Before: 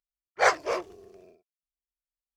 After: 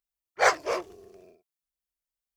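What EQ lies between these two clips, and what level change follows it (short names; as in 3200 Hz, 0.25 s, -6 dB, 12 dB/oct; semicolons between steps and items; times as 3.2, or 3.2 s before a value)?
high shelf 8400 Hz +6 dB; 0.0 dB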